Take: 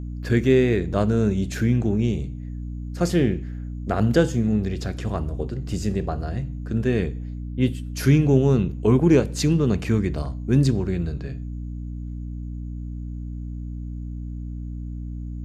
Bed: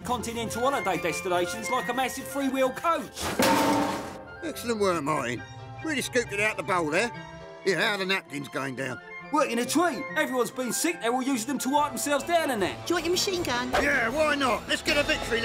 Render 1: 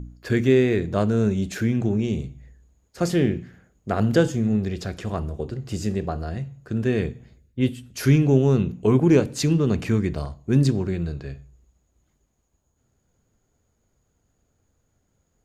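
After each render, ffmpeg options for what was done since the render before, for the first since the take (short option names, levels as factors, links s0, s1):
-af "bandreject=f=60:t=h:w=4,bandreject=f=120:t=h:w=4,bandreject=f=180:t=h:w=4,bandreject=f=240:t=h:w=4,bandreject=f=300:t=h:w=4"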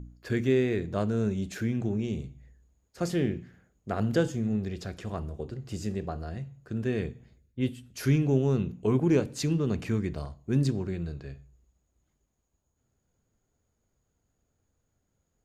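-af "volume=0.447"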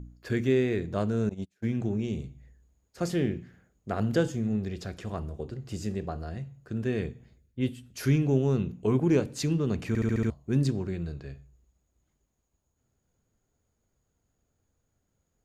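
-filter_complex "[0:a]asettb=1/sr,asplit=3[s0][s1][s2];[s0]atrim=end=1.294[s3];[s1]atrim=start=1.29:end=1.73,asetpts=PTS-STARTPTS,afade=t=in:d=0.004:c=qsin,afade=t=out:st=0.436:d=0.004:c=qsin,agate=range=0.0178:threshold=0.0316:ratio=16:release=100:detection=peak[s4];[s2]atrim=start=1.726[s5];[s3][s4]acrossfade=d=0.004:c1=hsin:c2=qsin[s6];[s6][s5]acrossfade=d=0.004:c1=qsin:c2=hsin,asplit=7[s7][s8][s9][s10][s11][s12][s13];[s7]atrim=end=9.952[s14];[s8]atrim=start=9.878:end=9.952[s15];[s9]atrim=start=9.878:end=9.952[s16];[s10]atrim=start=9.878:end=9.952[s17];[s11]atrim=start=9.878:end=9.952[s18];[s12]atrim=start=9.878:end=9.952[s19];[s13]atrim=start=10.298[s20];[s14][s15]acrossfade=d=0.004:c1=hsin:c2=hsin[s21];[s21][s16]acrossfade=d=0.004:c1=hsin:c2=hsin[s22];[s22][s17]acrossfade=d=0.004:c1=hsin:c2=hsin[s23];[s23][s18]acrossfade=d=0.004:c1=hsin:c2=hsin[s24];[s24][s19]acrossfade=d=0.004:c1=hsin:c2=hsin[s25];[s25][s20]acrossfade=d=0.004:c1=hsin:c2=hsin"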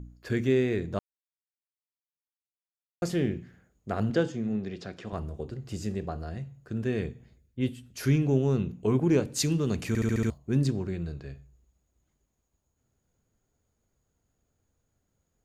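-filter_complex "[0:a]asettb=1/sr,asplit=3[s0][s1][s2];[s0]atrim=end=4.104[s3];[s1]atrim=start=4.1:end=5.13,asetpts=PTS-STARTPTS,afade=t=in:d=0.004:c=qsin,afade=t=out:st=1.026:d=0.004:c=qsin,highpass=150,lowpass=5300[s4];[s2]atrim=start=5.126[s5];[s3][s4]acrossfade=d=0.004:c1=hsin:c2=qsin[s6];[s6][s5]acrossfade=d=0.004:c1=qsin:c2=hsin,asettb=1/sr,asplit=3[s7][s8][s9];[s7]atrim=end=9.344[s10];[s8]atrim=start=9.34:end=10.38,asetpts=PTS-STARTPTS,afade=t=in:d=0.004:c=qsin,afade=t=out:st=1.036:d=0.004:c=qsin,highshelf=f=4100:g=10.5[s11];[s9]atrim=start=10.376[s12];[s10][s11]acrossfade=d=0.004:c1=hsin:c2=qsin[s13];[s13][s12]acrossfade=d=0.004:c1=qsin:c2=hsin,asplit=3[s14][s15][s16];[s14]atrim=end=0.99,asetpts=PTS-STARTPTS,afade=t=out:st=0.986:d=0.004:c=hsin[s17];[s15]atrim=start=0.99:end=3.02,asetpts=PTS-STARTPTS,volume=0[s18];[s16]atrim=start=3.02,asetpts=PTS-STARTPTS,afade=t=in:d=0.004:c=hsin[s19];[s17][s18][s19]concat=n=3:v=0:a=1"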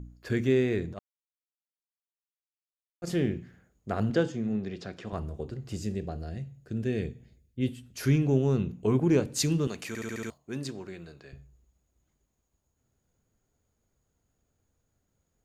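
-filter_complex "[0:a]asplit=3[s0][s1][s2];[s0]afade=t=out:st=0.92:d=0.02[s3];[s1]agate=range=0.2:threshold=0.0447:ratio=16:release=100:detection=peak,afade=t=in:st=0.92:d=0.02,afade=t=out:st=3.06:d=0.02[s4];[s2]afade=t=in:st=3.06:d=0.02[s5];[s3][s4][s5]amix=inputs=3:normalize=0,asettb=1/sr,asplit=3[s6][s7][s8];[s6]atrim=end=5.804[s9];[s7]atrim=start=5.8:end=7.68,asetpts=PTS-STARTPTS,afade=t=in:d=0.004:c=qsin,afade=t=out:st=1.876:d=0.004:c=qsin,equalizer=f=1100:w=1.5:g=-10[s10];[s8]atrim=start=7.676[s11];[s9][s10]acrossfade=d=0.004:c1=hsin:c2=qsin[s12];[s12][s11]acrossfade=d=0.004:c1=qsin:c2=hsin,asettb=1/sr,asplit=3[s13][s14][s15];[s13]atrim=end=9.674[s16];[s14]atrim=start=9.67:end=11.33,asetpts=PTS-STARTPTS,afade=t=in:d=0.004:c=qsin,afade=t=out:st=1.656:d=0.004:c=qsin,highpass=f=670:p=1[s17];[s15]atrim=start=11.326[s18];[s16][s17]acrossfade=d=0.004:c1=hsin:c2=qsin[s19];[s19][s18]acrossfade=d=0.004:c1=qsin:c2=hsin"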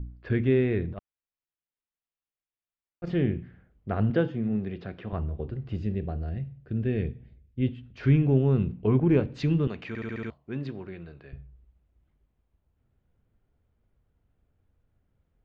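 -af "lowpass=f=3200:w=0.5412,lowpass=f=3200:w=1.3066,lowshelf=f=110:g=10"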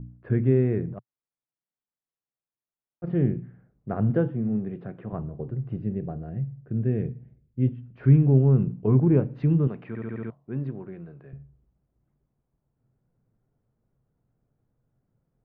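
-af "lowpass=1300,lowshelf=f=100:t=q:w=3:g=-6.5"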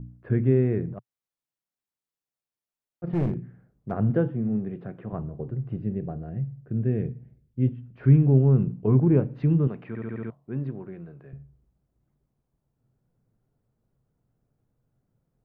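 -filter_complex "[0:a]asplit=3[s0][s1][s2];[s0]afade=t=out:st=3.06:d=0.02[s3];[s1]aeval=exprs='clip(val(0),-1,0.0668)':c=same,afade=t=in:st=3.06:d=0.02,afade=t=out:st=3.9:d=0.02[s4];[s2]afade=t=in:st=3.9:d=0.02[s5];[s3][s4][s5]amix=inputs=3:normalize=0"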